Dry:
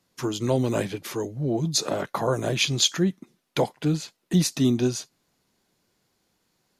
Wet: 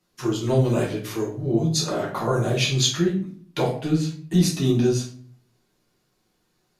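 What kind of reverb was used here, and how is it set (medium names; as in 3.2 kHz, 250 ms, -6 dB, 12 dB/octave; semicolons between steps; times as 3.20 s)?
simulated room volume 49 m³, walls mixed, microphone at 1 m; trim -4.5 dB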